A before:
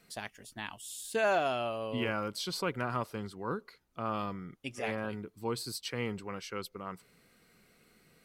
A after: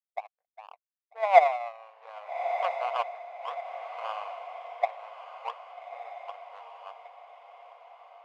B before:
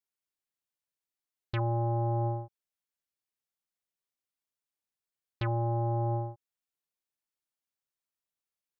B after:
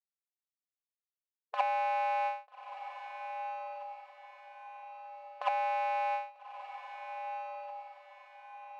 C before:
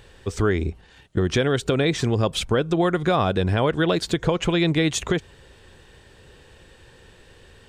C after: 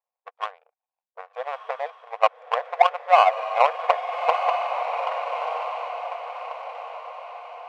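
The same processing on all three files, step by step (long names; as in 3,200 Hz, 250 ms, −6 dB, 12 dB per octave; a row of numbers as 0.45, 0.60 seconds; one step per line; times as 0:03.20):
formant resonators in series a
harmonic and percussive parts rebalanced harmonic −7 dB
power curve on the samples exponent 2
linear-phase brick-wall high-pass 450 Hz
on a send: feedback delay with all-pass diffusion 1,277 ms, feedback 45%, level −8.5 dB
on the sum: boost into a limiter +28.5 dB
level −1 dB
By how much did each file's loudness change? +6.0, −4.0, −2.0 LU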